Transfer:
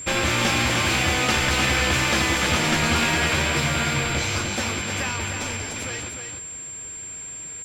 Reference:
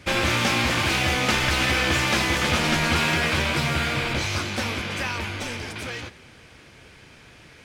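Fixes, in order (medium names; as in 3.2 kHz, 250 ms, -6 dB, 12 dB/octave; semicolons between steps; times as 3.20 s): clip repair -11.5 dBFS; band-stop 7.4 kHz, Q 30; inverse comb 303 ms -6.5 dB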